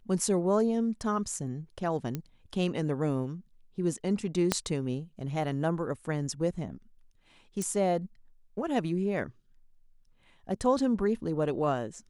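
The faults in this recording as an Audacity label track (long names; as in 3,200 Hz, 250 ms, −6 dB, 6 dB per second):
2.150000	2.150000	click −19 dBFS
4.520000	4.520000	click −9 dBFS
7.620000	7.620000	click −20 dBFS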